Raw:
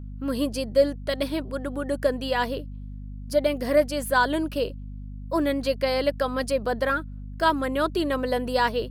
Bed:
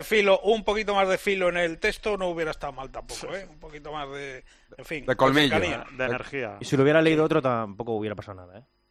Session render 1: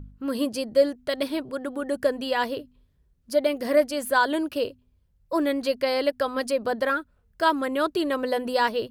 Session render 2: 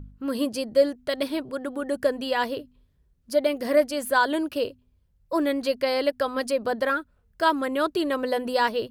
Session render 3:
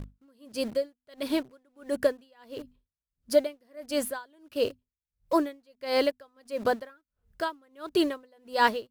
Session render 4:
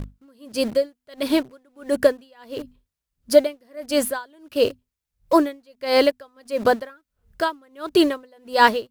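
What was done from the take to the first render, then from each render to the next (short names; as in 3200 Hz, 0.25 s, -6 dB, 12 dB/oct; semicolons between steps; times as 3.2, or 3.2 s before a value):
de-hum 50 Hz, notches 5
nothing audible
in parallel at -11 dB: requantised 6-bit, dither none; on the sum: dB-linear tremolo 1.5 Hz, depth 37 dB
gain +8 dB; limiter -2 dBFS, peak gain reduction 1 dB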